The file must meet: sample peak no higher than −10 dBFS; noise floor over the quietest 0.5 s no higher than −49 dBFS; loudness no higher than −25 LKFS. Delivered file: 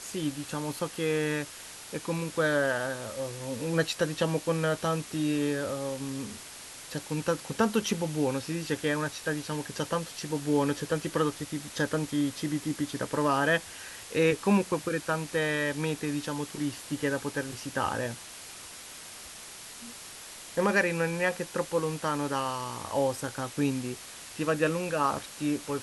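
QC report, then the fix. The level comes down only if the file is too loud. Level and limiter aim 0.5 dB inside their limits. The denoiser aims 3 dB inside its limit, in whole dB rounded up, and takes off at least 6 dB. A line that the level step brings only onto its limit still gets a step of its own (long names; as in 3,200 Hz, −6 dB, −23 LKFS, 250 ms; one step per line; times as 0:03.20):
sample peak −12.5 dBFS: in spec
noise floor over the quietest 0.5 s −45 dBFS: out of spec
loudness −30.0 LKFS: in spec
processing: broadband denoise 7 dB, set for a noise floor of −45 dBFS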